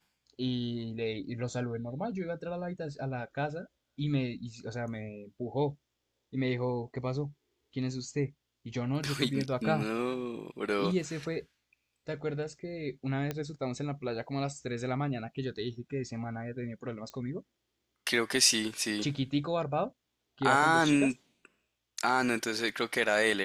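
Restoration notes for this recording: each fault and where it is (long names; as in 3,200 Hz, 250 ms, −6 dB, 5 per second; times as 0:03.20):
0:13.31: click −19 dBFS
0:17.10: click −27 dBFS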